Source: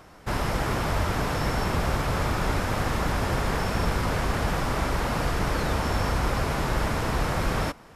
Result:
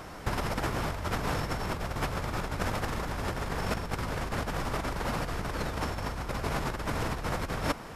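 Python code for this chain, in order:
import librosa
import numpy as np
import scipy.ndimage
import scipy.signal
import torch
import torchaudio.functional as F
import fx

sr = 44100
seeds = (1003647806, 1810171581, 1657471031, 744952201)

y = fx.over_compress(x, sr, threshold_db=-30.0, ratio=-0.5)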